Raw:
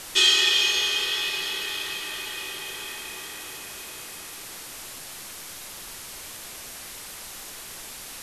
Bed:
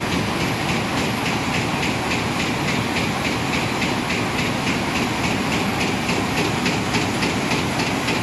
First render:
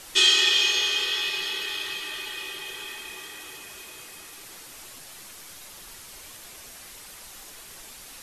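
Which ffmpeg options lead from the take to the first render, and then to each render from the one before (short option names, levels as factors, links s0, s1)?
-af "afftdn=nr=6:nf=-40"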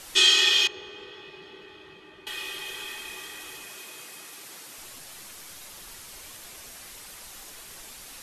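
-filter_complex "[0:a]asettb=1/sr,asplit=3[s0][s1][s2];[s0]atrim=end=0.674[s3];[s1]atrim=start=0.67:end=2.27,asetpts=PTS-STARTPTS,afade=t=in:d=0.004:c=qsin,afade=t=out:st=1.596:d=0.004:c=qsin,bandpass=f=150:t=q:w=0.51[s4];[s2]atrim=start=2.266[s5];[s3][s4]acrossfade=d=0.004:c1=hsin:c2=qsin[s6];[s6][s5]acrossfade=d=0.004:c1=qsin:c2=hsin,asettb=1/sr,asplit=3[s7][s8][s9];[s7]atrim=end=3.664[s10];[s8]atrim=start=3.66:end=4.78,asetpts=PTS-STARTPTS,afade=t=in:d=0.004:c=qsin,afade=t=out:st=1.116:d=0.004:c=qsin,highpass=140[s11];[s9]atrim=start=4.776[s12];[s10][s11]acrossfade=d=0.004:c1=hsin:c2=qsin[s13];[s13][s12]acrossfade=d=0.004:c1=qsin:c2=hsin"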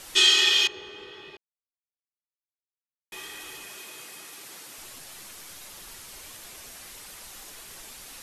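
-filter_complex "[0:a]asplit=3[s0][s1][s2];[s0]atrim=end=1.37,asetpts=PTS-STARTPTS,afade=t=out:st=1.366:d=0.004:c=hsin[s3];[s1]atrim=start=1.37:end=3.12,asetpts=PTS-STARTPTS,volume=0[s4];[s2]atrim=start=3.12,asetpts=PTS-STARTPTS,afade=t=in:d=0.004:c=hsin[s5];[s3][s4][s5]concat=n=3:v=0:a=1"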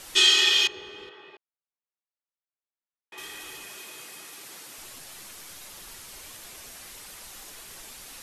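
-filter_complex "[0:a]asettb=1/sr,asplit=3[s0][s1][s2];[s0]atrim=end=1.094[s3];[s1]atrim=start=1.09:end=3.18,asetpts=PTS-STARTPTS,afade=t=in:d=0.004:c=qsin,afade=t=out:st=2.086:d=0.004:c=qsin,bandpass=f=940:t=q:w=0.54[s4];[s2]atrim=start=3.176[s5];[s3][s4]acrossfade=d=0.004:c1=hsin:c2=qsin[s6];[s6][s5]acrossfade=d=0.004:c1=qsin:c2=hsin"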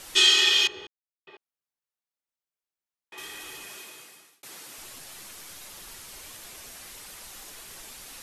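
-filter_complex "[0:a]asplit=4[s0][s1][s2][s3];[s0]atrim=end=0.87,asetpts=PTS-STARTPTS,afade=t=out:st=0.866:d=0.004:c=hsin[s4];[s1]atrim=start=0.87:end=1.27,asetpts=PTS-STARTPTS,volume=0[s5];[s2]atrim=start=1.27:end=4.43,asetpts=PTS-STARTPTS,afade=t=in:d=0.004:c=hsin,afade=t=out:st=2.48:d=0.68[s6];[s3]atrim=start=4.43,asetpts=PTS-STARTPTS,afade=t=in:d=0.004:c=hsin[s7];[s4][s5][s6][s7]concat=n=4:v=0:a=1"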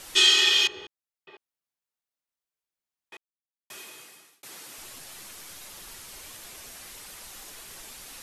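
-filter_complex "[0:a]asplit=3[s0][s1][s2];[s0]atrim=end=3.17,asetpts=PTS-STARTPTS,afade=t=out:st=3.166:d=0.004:c=hsin[s3];[s1]atrim=start=3.17:end=3.7,asetpts=PTS-STARTPTS,volume=0[s4];[s2]atrim=start=3.7,asetpts=PTS-STARTPTS,afade=t=in:d=0.004:c=hsin[s5];[s3][s4][s5]concat=n=3:v=0:a=1"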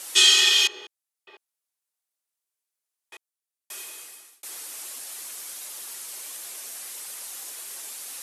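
-af "highpass=350,equalizer=f=10000:w=0.64:g=9.5"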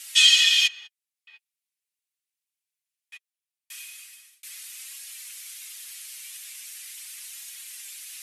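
-af "highpass=f=2300:t=q:w=1.8,flanger=delay=3.6:depth=4.5:regen=27:speed=0.4:shape=sinusoidal"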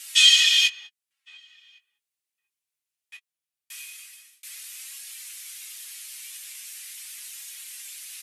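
-filter_complex "[0:a]asplit=2[s0][s1];[s1]adelay=20,volume=0.355[s2];[s0][s2]amix=inputs=2:normalize=0,asplit=2[s3][s4];[s4]adelay=1108,volume=0.0501,highshelf=f=4000:g=-24.9[s5];[s3][s5]amix=inputs=2:normalize=0"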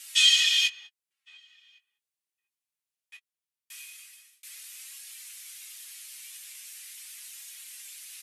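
-af "volume=0.596"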